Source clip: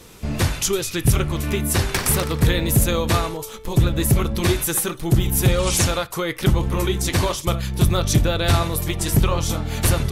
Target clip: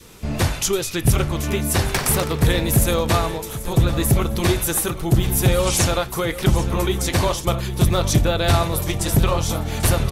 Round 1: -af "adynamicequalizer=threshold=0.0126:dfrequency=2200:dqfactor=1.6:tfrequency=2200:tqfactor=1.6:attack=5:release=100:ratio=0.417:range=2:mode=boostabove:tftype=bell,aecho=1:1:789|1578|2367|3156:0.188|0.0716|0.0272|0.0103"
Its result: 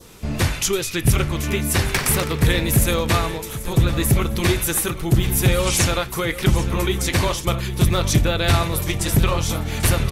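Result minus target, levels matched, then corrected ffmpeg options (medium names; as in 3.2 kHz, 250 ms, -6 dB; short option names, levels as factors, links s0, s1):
2 kHz band +2.5 dB
-af "adynamicequalizer=threshold=0.0126:dfrequency=700:dqfactor=1.6:tfrequency=700:tqfactor=1.6:attack=5:release=100:ratio=0.417:range=2:mode=boostabove:tftype=bell,aecho=1:1:789|1578|2367|3156:0.188|0.0716|0.0272|0.0103"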